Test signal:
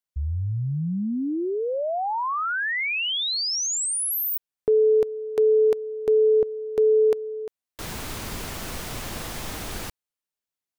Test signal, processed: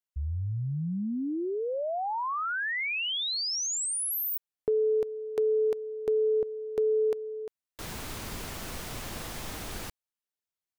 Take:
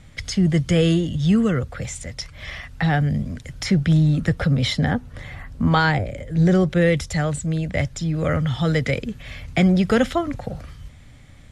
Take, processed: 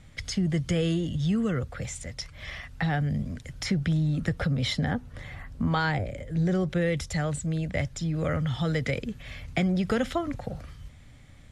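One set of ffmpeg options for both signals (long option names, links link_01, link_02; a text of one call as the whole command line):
ffmpeg -i in.wav -af "acompressor=threshold=-21dB:ratio=2:attack=23:release=154:knee=1:detection=peak,volume=-5dB" out.wav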